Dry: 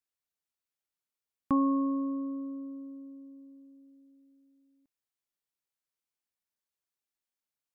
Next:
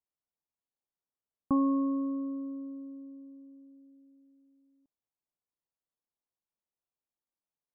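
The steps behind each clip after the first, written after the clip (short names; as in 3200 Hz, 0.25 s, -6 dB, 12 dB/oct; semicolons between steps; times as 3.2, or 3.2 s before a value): LPF 1100 Hz 24 dB/oct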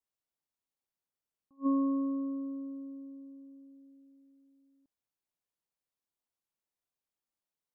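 attack slew limiter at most 410 dB/s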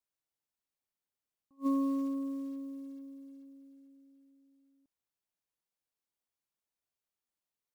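short-mantissa float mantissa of 4-bit; gain -1.5 dB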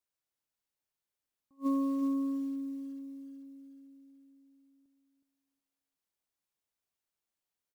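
feedback echo 0.368 s, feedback 24%, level -6.5 dB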